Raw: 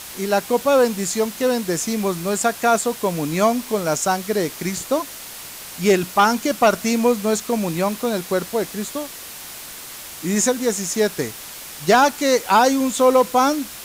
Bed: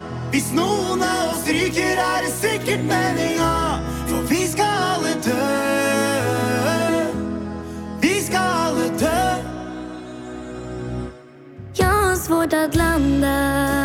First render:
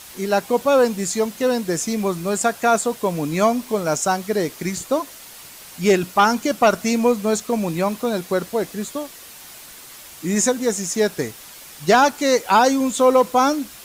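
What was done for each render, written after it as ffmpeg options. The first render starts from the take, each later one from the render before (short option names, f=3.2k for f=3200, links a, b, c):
-af "afftdn=nr=6:nf=-36"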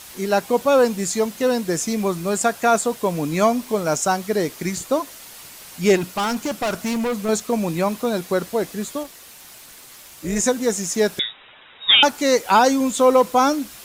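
-filter_complex "[0:a]asettb=1/sr,asplit=3[a][b][c];[a]atrim=end=5.964[d];[b]atrim=start=5.96:end=7.29,asetpts=PTS-STARTPTS,afade=t=in:d=0.004:c=qsin,afade=t=out:st=1.326:d=0.004:c=qsin,volume=20dB,asoftclip=hard,volume=-20dB[e];[c]atrim=start=7.286[f];[d][e]acrossfade=d=0.004:c1=hsin:c2=qsin[g];[g][f]acrossfade=d=0.004:c1=qsin:c2=hsin,asettb=1/sr,asplit=3[h][i][j];[h]atrim=end=9.034[k];[i]atrim=start=9.03:end=10.46,asetpts=PTS-STARTPTS,afade=t=in:d=0.004:c=qsin,afade=t=out:st=1.426:d=0.004:c=qsin,tremolo=f=240:d=0.571[l];[j]atrim=start=10.456[m];[k][l]acrossfade=d=0.004:c1=hsin:c2=qsin[n];[n][m]acrossfade=d=0.004:c1=qsin:c2=hsin,asettb=1/sr,asplit=3[o][p][q];[o]atrim=end=11.194[r];[p]atrim=start=11.19:end=12.03,asetpts=PTS-STARTPTS,afade=t=in:d=0.004:c=qsin,afade=t=out:st=0.836:d=0.004:c=qsin,lowpass=f=3.3k:t=q:w=0.5098,lowpass=f=3.3k:t=q:w=0.6013,lowpass=f=3.3k:t=q:w=0.9,lowpass=f=3.3k:t=q:w=2.563,afreqshift=-3900[s];[q]atrim=start=12.026[t];[r][s]acrossfade=d=0.004:c1=hsin:c2=qsin[u];[u][t]acrossfade=d=0.004:c1=qsin:c2=hsin"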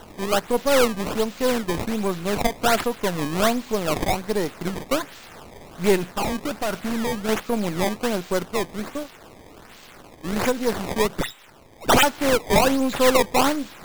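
-af "aeval=exprs='if(lt(val(0),0),0.447*val(0),val(0))':c=same,acrusher=samples=18:mix=1:aa=0.000001:lfo=1:lforange=28.8:lforate=1.3"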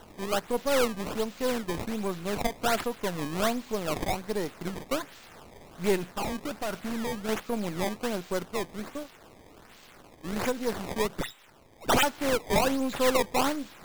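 -af "volume=-7dB"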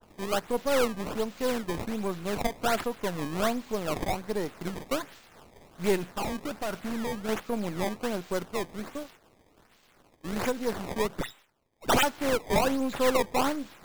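-af "agate=range=-33dB:threshold=-44dB:ratio=3:detection=peak,adynamicequalizer=threshold=0.00708:dfrequency=2200:dqfactor=0.7:tfrequency=2200:tqfactor=0.7:attack=5:release=100:ratio=0.375:range=1.5:mode=cutabove:tftype=highshelf"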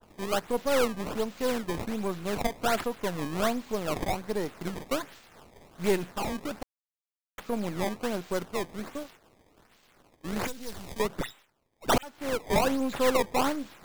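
-filter_complex "[0:a]asettb=1/sr,asplit=3[a][b][c];[a]atrim=end=10.474[d];[b]atrim=start=10.47:end=11,asetpts=PTS-STARTPTS,afade=t=in:d=0.004:c=qsin,afade=t=out:st=0.526:d=0.004:c=qsin,acrossover=split=120|3000[e][f][g];[f]acompressor=threshold=-50dB:ratio=2:attack=3.2:release=140:knee=2.83:detection=peak[h];[e][h][g]amix=inputs=3:normalize=0[i];[c]atrim=start=10.996[j];[d][i]acrossfade=d=0.004:c1=hsin:c2=qsin[k];[k][j]acrossfade=d=0.004:c1=qsin:c2=hsin,asplit=4[l][m][n][o];[l]atrim=end=6.63,asetpts=PTS-STARTPTS,afade=t=out:st=6.626:d=0.004:c=hsin[p];[m]atrim=start=6.63:end=7.38,asetpts=PTS-STARTPTS,volume=0[q];[n]atrim=start=7.38:end=11.98,asetpts=PTS-STARTPTS,afade=t=in:d=0.004:c=hsin,afade=t=out:st=4.596:d=0.004:c=hsin[r];[o]atrim=start=11.98,asetpts=PTS-STARTPTS,afade=t=in:d=0.52[s];[p][q][r][s]concat=n=4:v=0:a=1"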